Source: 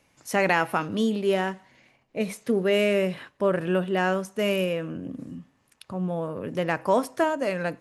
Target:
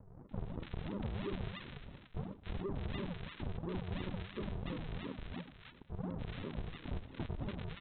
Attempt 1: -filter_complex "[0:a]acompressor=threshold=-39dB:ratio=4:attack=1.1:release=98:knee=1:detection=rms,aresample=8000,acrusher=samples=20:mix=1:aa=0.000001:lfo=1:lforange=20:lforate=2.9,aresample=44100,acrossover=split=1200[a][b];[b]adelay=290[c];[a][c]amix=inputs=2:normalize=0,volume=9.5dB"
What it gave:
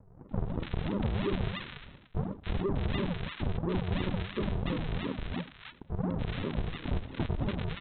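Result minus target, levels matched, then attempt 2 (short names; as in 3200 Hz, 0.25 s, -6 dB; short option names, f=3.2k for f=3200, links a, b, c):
compressor: peak gain reduction -9 dB
-filter_complex "[0:a]acompressor=threshold=-51dB:ratio=4:attack=1.1:release=98:knee=1:detection=rms,aresample=8000,acrusher=samples=20:mix=1:aa=0.000001:lfo=1:lforange=20:lforate=2.9,aresample=44100,acrossover=split=1200[a][b];[b]adelay=290[c];[a][c]amix=inputs=2:normalize=0,volume=9.5dB"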